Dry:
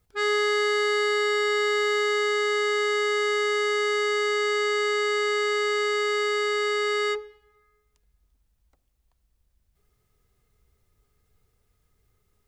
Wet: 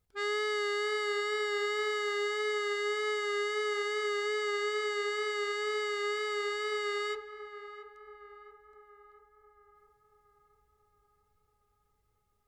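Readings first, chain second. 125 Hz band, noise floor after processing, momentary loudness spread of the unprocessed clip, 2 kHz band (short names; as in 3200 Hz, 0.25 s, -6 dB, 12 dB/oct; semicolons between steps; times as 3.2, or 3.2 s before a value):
n/a, -75 dBFS, 2 LU, -8.5 dB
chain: wow and flutter 28 cents; on a send: narrowing echo 0.68 s, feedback 68%, band-pass 790 Hz, level -10 dB; on the sum: gain -8.5 dB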